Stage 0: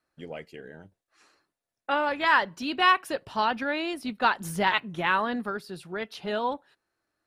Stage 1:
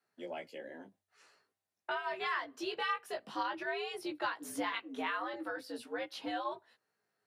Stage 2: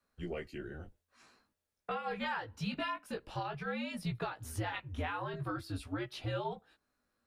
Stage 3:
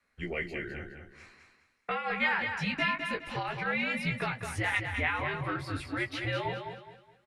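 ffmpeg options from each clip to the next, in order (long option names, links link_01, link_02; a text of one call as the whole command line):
ffmpeg -i in.wav -af "acompressor=threshold=-33dB:ratio=3,afreqshift=95,flanger=delay=16.5:depth=2.8:speed=0.48" out.wav
ffmpeg -i in.wav -af "lowshelf=frequency=300:gain=7,alimiter=level_in=3.5dB:limit=-24dB:level=0:latency=1:release=474,volume=-3.5dB,afreqshift=-180,volume=1dB" out.wav
ffmpeg -i in.wav -filter_complex "[0:a]lowpass=frequency=11000:width=0.5412,lowpass=frequency=11000:width=1.3066,equalizer=frequency=2100:width=2.4:gain=15,asplit=2[link_01][link_02];[link_02]aecho=0:1:208|416|624|832:0.473|0.151|0.0485|0.0155[link_03];[link_01][link_03]amix=inputs=2:normalize=0,volume=2.5dB" out.wav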